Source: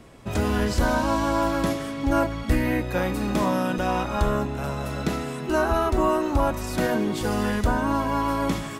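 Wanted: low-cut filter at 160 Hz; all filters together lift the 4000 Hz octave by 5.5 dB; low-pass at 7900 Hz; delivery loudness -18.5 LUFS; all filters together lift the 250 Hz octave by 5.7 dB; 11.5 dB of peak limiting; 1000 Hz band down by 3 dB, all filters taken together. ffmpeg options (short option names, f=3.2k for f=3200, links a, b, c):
-af "highpass=160,lowpass=7.9k,equalizer=f=250:t=o:g=8,equalizer=f=1k:t=o:g=-4.5,equalizer=f=4k:t=o:g=7.5,volume=9dB,alimiter=limit=-10.5dB:level=0:latency=1"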